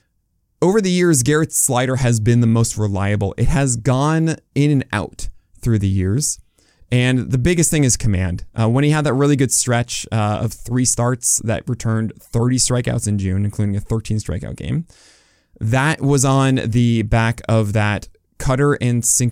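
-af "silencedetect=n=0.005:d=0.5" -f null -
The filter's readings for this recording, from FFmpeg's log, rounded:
silence_start: 0.00
silence_end: 0.62 | silence_duration: 0.62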